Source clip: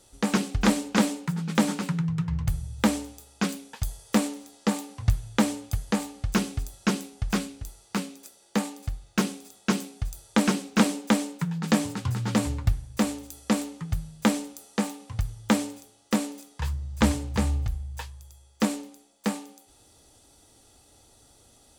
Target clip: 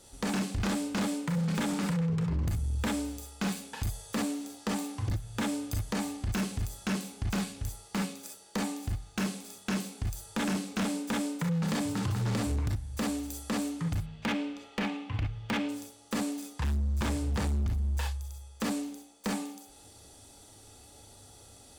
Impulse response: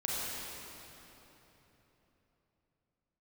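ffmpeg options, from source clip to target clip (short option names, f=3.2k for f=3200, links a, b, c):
-filter_complex "[0:a]acompressor=threshold=-29dB:ratio=4,asettb=1/sr,asplit=3[a][b][c];[a]atrim=end=13.994[d];[b]atrim=start=13.99:end=15.69,asetpts=PTS-STARTPTS,afade=t=in:d=0.004:c=qsin,afade=t=out:st=1.696:d=0.004:c=qsin,lowpass=f=2.7k:t=q:w=2.3[e];[c]atrim=start=15.686[f];[d][e]acrossfade=d=0.004:c1=hsin:c2=qsin[g];[g][f]acrossfade=d=0.004:c1=qsin:c2=hsin[h];[1:a]atrim=start_sample=2205,atrim=end_sample=3528,asetrate=48510,aresample=44100[i];[h][i]afir=irnorm=-1:irlink=0,asoftclip=type=hard:threshold=-29.5dB,volume=3dB"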